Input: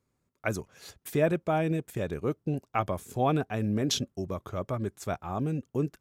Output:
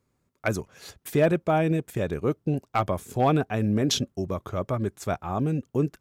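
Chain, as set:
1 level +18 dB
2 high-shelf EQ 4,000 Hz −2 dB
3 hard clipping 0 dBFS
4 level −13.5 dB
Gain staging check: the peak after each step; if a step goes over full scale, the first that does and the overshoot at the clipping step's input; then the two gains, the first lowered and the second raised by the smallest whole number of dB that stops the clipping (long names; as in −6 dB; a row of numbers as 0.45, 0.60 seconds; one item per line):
+6.0, +6.0, 0.0, −13.5 dBFS
step 1, 6.0 dB
step 1 +12 dB, step 4 −7.5 dB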